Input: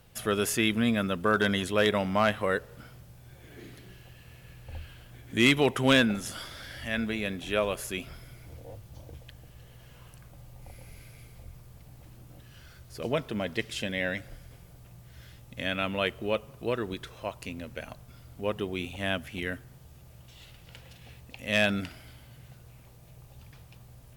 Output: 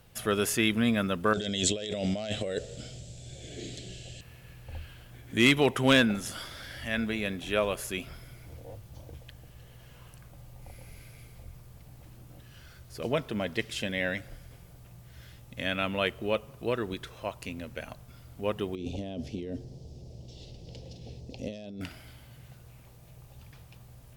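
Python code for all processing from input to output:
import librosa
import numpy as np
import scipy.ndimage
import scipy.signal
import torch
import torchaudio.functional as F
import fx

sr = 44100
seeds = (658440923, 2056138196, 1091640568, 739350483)

y = fx.chain(x, sr, fx.curve_eq(hz=(310.0, 660.0, 1000.0, 3600.0, 16000.0), db=(0, 3, -20, 7, -12)),
    fx.over_compress(threshold_db=-32.0, ratio=-1.0),
    fx.lowpass_res(hz=7500.0, q=7.7), at=(1.33, 4.21))
y = fx.chain(y, sr, fx.curve_eq(hz=(120.0, 430.0, 750.0, 1400.0, 5200.0, 12000.0), db=(0, 6, -4, -26, 2, -23)),
    fx.over_compress(threshold_db=-37.0, ratio=-1.0), at=(18.75, 21.81))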